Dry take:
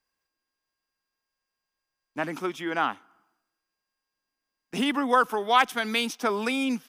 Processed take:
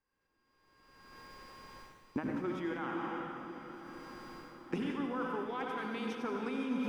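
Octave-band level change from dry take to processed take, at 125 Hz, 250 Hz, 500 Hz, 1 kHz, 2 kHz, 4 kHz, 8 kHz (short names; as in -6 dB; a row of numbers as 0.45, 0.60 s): -2.0 dB, -6.0 dB, -9.0 dB, -14.5 dB, -14.0 dB, -18.5 dB, under -15 dB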